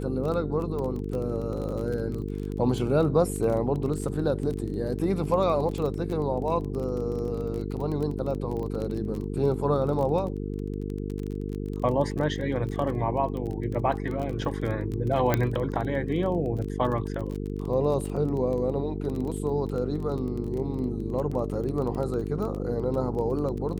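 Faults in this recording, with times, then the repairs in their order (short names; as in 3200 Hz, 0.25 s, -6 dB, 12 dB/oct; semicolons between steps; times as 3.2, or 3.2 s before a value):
buzz 50 Hz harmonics 9 -32 dBFS
crackle 21/s -31 dBFS
15.34 pop -9 dBFS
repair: de-click; de-hum 50 Hz, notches 9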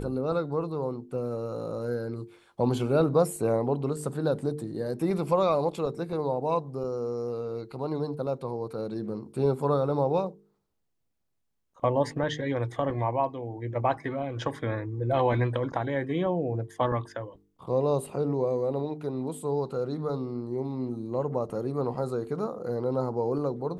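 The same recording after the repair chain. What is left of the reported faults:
none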